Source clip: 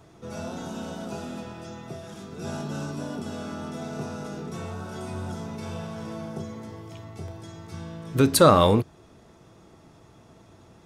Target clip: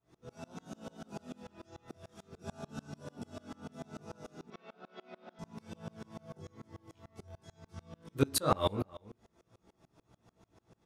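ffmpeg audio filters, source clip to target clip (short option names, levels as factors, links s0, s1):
-filter_complex "[0:a]flanger=delay=16.5:depth=6.3:speed=0.2,asettb=1/sr,asplit=3[s0][s1][s2];[s0]atrim=end=4.504[s3];[s1]atrim=start=4.5:end=5.39,asetpts=PTS-STARTPTS,afade=t=in:d=0.004:c=qsin,afade=t=out:st=0.886:d=0.004:c=qsin,highpass=f=250:w=0.5412,highpass=f=250:w=1.3066,equalizer=f=310:t=q:w=4:g=-10,equalizer=f=880:t=q:w=4:g=-4,equalizer=f=2300:t=q:w=4:g=4,lowpass=f=4200:w=0.5412,lowpass=f=4200:w=1.3066[s4];[s2]atrim=start=5.386[s5];[s3][s4]acrossfade=d=0.004:c1=hsin:c2=qsin[s6];[s6][s5]acrossfade=d=0.004:c1=qsin:c2=hsin,asplit=2[s7][s8];[s8]adelay=326.5,volume=0.1,highshelf=f=4000:g=-7.35[s9];[s7][s9]amix=inputs=2:normalize=0,aeval=exprs='val(0)*pow(10,-30*if(lt(mod(-6.8*n/s,1),2*abs(-6.8)/1000),1-mod(-6.8*n/s,1)/(2*abs(-6.8)/1000),(mod(-6.8*n/s,1)-2*abs(-6.8)/1000)/(1-2*abs(-6.8)/1000))/20)':c=same,volume=0.794"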